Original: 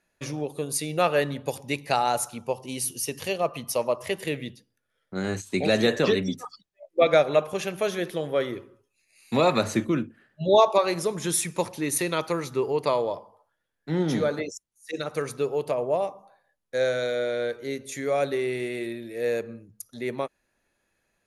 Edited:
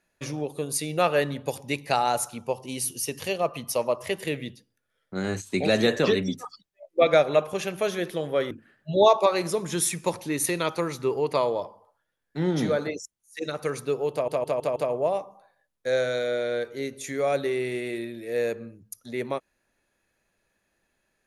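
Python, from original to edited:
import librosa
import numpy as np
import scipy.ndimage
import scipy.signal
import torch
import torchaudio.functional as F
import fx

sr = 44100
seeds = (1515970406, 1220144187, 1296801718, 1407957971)

y = fx.edit(x, sr, fx.cut(start_s=8.51, length_s=1.52),
    fx.stutter(start_s=15.64, slice_s=0.16, count=5), tone=tone)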